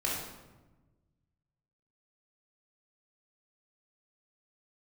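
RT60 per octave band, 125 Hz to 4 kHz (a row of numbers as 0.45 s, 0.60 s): 2.1 s, 1.6 s, 1.2 s, 1.1 s, 0.90 s, 0.70 s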